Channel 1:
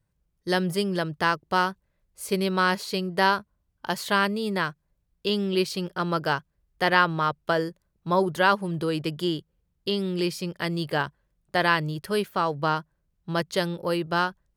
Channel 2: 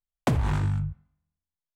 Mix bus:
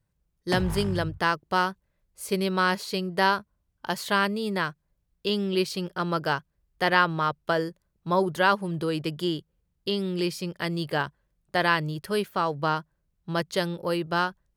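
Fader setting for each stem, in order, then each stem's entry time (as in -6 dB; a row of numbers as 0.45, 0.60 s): -1.0, -6.5 dB; 0.00, 0.25 s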